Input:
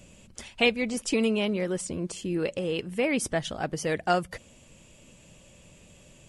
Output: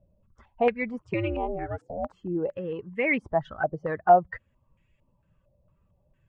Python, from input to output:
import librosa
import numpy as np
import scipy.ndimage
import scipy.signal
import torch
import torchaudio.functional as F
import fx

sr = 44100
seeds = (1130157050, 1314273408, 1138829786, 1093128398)

y = fx.bin_expand(x, sr, power=1.5)
y = fx.ring_mod(y, sr, carrier_hz=fx.line((0.99, 85.0), (2.12, 470.0)), at=(0.99, 2.12), fade=0.02)
y = fx.filter_held_lowpass(y, sr, hz=4.4, low_hz=660.0, high_hz=2000.0)